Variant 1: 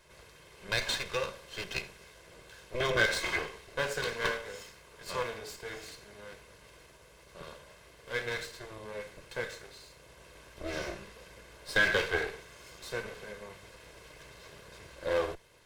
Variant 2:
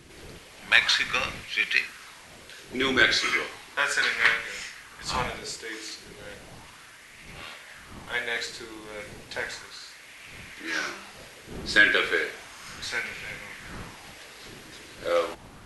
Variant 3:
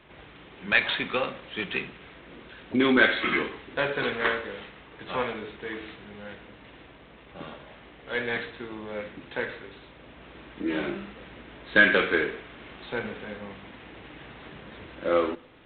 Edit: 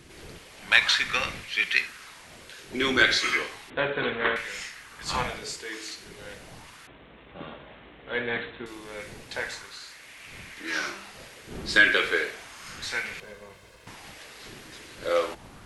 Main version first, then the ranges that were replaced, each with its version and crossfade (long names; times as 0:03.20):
2
0:03.70–0:04.36: punch in from 3
0:06.87–0:08.66: punch in from 3
0:13.20–0:13.87: punch in from 1